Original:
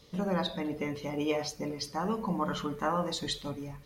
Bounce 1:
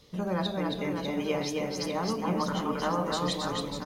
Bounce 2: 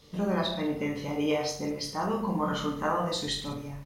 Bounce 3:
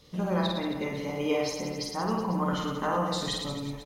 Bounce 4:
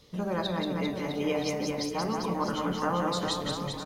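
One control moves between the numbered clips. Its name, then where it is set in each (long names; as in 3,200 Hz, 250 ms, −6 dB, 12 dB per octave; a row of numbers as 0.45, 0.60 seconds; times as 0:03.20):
reverse bouncing-ball delay, first gap: 270, 20, 50, 180 milliseconds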